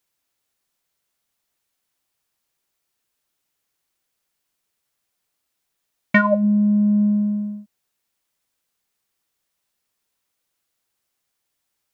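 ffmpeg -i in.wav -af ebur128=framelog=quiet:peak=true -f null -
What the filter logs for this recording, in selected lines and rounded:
Integrated loudness:
  I:         -18.5 LUFS
  Threshold: -29.2 LUFS
Loudness range:
  LRA:         9.1 LU
  Threshold: -43.0 LUFS
  LRA low:   -30.3 LUFS
  LRA high:  -21.2 LUFS
True peak:
  Peak:       -3.1 dBFS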